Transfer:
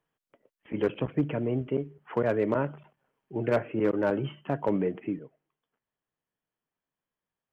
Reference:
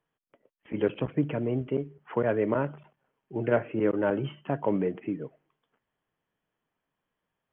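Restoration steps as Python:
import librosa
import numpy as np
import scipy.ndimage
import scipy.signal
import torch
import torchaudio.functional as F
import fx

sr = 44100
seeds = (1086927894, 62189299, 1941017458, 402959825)

y = fx.fix_declip(x, sr, threshold_db=-16.5)
y = fx.fix_level(y, sr, at_s=5.19, step_db=8.5)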